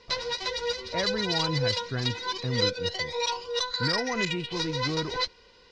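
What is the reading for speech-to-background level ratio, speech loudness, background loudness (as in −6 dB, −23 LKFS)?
−4.5 dB, −33.5 LKFS, −29.0 LKFS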